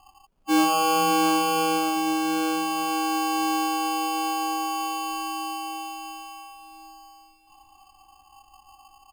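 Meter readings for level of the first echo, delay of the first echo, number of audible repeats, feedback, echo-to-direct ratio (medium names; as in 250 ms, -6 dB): -20.0 dB, 778 ms, 3, 45%, -19.0 dB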